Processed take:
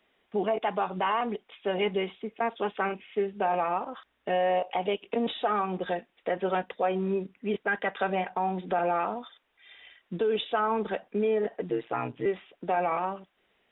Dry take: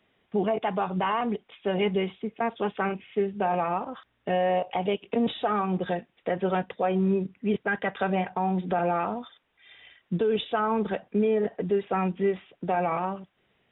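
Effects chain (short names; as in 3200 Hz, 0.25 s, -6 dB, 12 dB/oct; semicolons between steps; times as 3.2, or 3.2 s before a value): bell 120 Hz -14 dB 1.4 oct; 11.69–12.26 ring modulator 59 Hz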